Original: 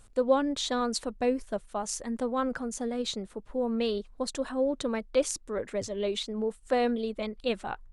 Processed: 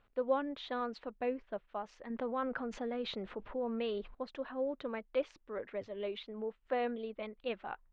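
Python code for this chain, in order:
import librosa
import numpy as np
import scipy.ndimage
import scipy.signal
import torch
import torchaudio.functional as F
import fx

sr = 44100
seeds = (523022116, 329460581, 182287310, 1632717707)

y = scipy.signal.sosfilt(scipy.signal.butter(4, 3000.0, 'lowpass', fs=sr, output='sos'), x)
y = fx.low_shelf(y, sr, hz=230.0, db=-11.0)
y = fx.env_flatten(y, sr, amount_pct=50, at=(2.1, 4.15))
y = F.gain(torch.from_numpy(y), -6.0).numpy()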